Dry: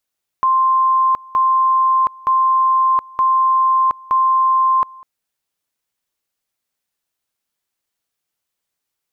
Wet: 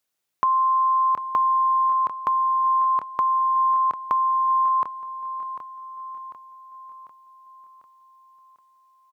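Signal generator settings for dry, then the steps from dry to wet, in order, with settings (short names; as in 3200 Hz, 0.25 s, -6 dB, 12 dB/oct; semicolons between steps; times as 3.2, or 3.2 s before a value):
two-level tone 1050 Hz -11 dBFS, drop 24.5 dB, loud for 0.72 s, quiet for 0.20 s, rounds 5
HPF 89 Hz; compressor 3:1, threshold -20 dBFS; feedback echo 0.746 s, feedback 52%, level -11 dB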